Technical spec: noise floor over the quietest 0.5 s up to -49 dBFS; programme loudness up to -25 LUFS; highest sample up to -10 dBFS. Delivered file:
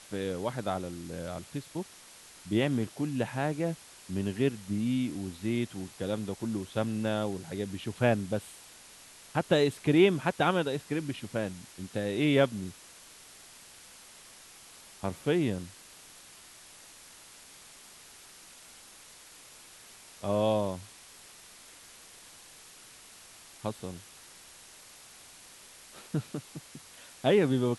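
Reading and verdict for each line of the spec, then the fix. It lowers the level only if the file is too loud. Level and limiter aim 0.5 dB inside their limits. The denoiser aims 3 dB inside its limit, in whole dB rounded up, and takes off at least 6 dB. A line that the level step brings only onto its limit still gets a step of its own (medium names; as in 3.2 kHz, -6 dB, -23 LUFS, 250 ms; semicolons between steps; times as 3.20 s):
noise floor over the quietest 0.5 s -53 dBFS: pass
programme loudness -31.0 LUFS: pass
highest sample -12.0 dBFS: pass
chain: none needed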